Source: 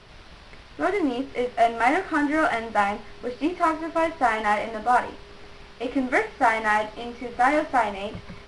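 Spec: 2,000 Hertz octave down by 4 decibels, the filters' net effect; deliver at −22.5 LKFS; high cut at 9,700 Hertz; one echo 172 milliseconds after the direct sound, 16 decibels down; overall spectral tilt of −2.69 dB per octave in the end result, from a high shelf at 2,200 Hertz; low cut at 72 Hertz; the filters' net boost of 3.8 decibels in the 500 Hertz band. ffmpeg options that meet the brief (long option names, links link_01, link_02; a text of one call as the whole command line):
ffmpeg -i in.wav -af "highpass=72,lowpass=9700,equalizer=frequency=500:width_type=o:gain=5.5,equalizer=frequency=2000:width_type=o:gain=-8,highshelf=frequency=2200:gain=5.5,aecho=1:1:172:0.158" out.wav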